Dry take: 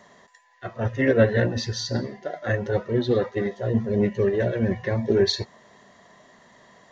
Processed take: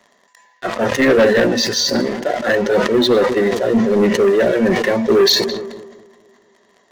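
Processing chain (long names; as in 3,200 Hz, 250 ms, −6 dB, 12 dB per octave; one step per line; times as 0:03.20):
high-pass filter 200 Hz 24 dB per octave
high-shelf EQ 3,500 Hz +3.5 dB
leveller curve on the samples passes 3
on a send: feedback echo with a low-pass in the loop 216 ms, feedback 62%, low-pass 1,400 Hz, level −23 dB
on the sum: level that may fall only so fast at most 44 dB per second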